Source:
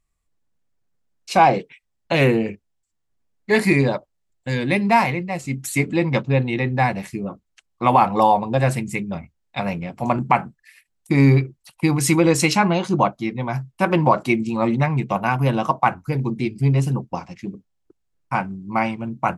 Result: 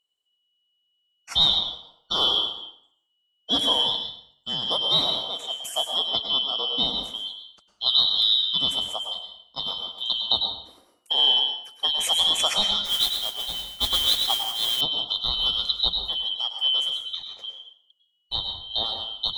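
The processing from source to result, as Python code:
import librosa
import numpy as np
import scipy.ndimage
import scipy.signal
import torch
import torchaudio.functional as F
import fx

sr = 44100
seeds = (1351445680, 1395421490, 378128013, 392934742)

y = fx.band_shuffle(x, sr, order='2413')
y = fx.rev_plate(y, sr, seeds[0], rt60_s=0.64, hf_ratio=0.85, predelay_ms=90, drr_db=4.5)
y = fx.mod_noise(y, sr, seeds[1], snr_db=10, at=(12.85, 14.81))
y = y * 10.0 ** (-6.5 / 20.0)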